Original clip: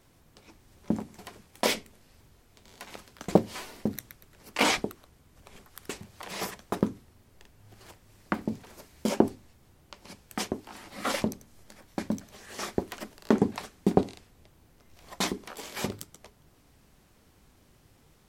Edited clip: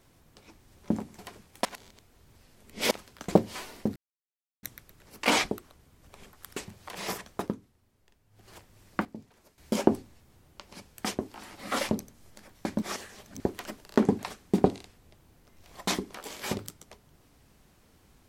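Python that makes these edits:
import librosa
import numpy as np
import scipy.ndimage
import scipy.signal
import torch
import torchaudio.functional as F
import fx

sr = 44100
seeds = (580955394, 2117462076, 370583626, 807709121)

y = fx.edit(x, sr, fx.reverse_span(start_s=1.65, length_s=1.26),
    fx.insert_silence(at_s=3.96, length_s=0.67),
    fx.fade_down_up(start_s=6.66, length_s=1.2, db=-10.5, fade_s=0.23),
    fx.clip_gain(start_s=8.38, length_s=0.53, db=-12.0),
    fx.reverse_span(start_s=12.15, length_s=0.58), tone=tone)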